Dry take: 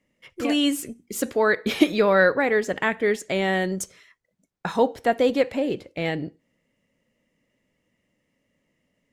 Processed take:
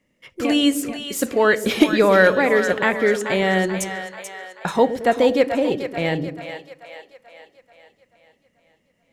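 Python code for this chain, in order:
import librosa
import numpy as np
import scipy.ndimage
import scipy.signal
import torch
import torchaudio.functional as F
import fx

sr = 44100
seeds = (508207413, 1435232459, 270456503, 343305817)

p1 = np.clip(x, -10.0 ** (-7.5 / 20.0), 10.0 ** (-7.5 / 20.0))
p2 = p1 + fx.echo_split(p1, sr, split_hz=540.0, low_ms=110, high_ms=436, feedback_pct=52, wet_db=-9.0, dry=0)
y = F.gain(torch.from_numpy(p2), 3.5).numpy()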